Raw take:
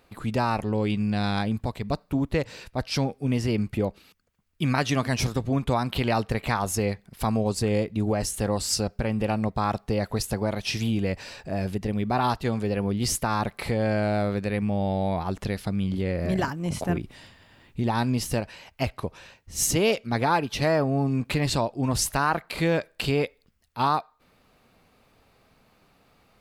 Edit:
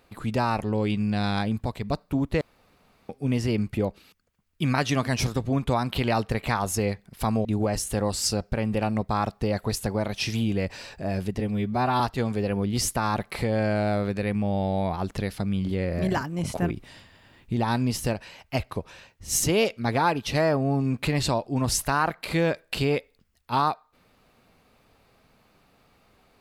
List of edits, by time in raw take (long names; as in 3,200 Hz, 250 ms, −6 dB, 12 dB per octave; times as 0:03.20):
0:02.41–0:03.09: fill with room tone
0:07.45–0:07.92: remove
0:11.87–0:12.27: time-stretch 1.5×